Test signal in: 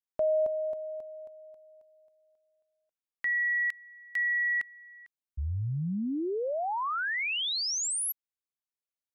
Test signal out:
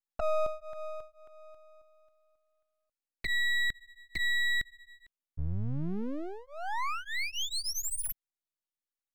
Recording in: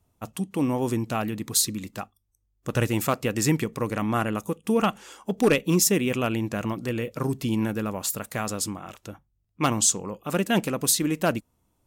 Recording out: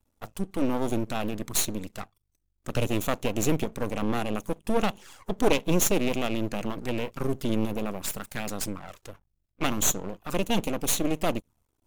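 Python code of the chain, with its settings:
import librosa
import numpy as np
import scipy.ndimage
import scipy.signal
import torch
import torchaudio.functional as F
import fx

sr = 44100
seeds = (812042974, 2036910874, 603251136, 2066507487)

y = fx.env_flanger(x, sr, rest_ms=3.6, full_db=-23.5)
y = np.maximum(y, 0.0)
y = F.gain(torch.from_numpy(y), 3.5).numpy()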